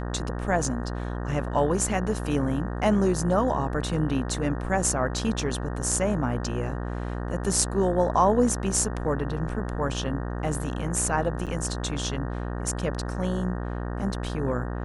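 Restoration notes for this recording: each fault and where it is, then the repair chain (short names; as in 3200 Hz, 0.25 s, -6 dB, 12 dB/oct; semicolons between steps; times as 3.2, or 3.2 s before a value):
buzz 60 Hz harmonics 31 -31 dBFS
11.46–11.47 gap 7.2 ms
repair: de-hum 60 Hz, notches 31; interpolate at 11.46, 7.2 ms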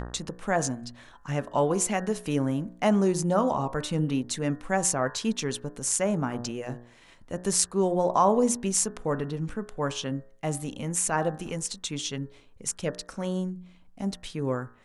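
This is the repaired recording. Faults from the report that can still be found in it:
none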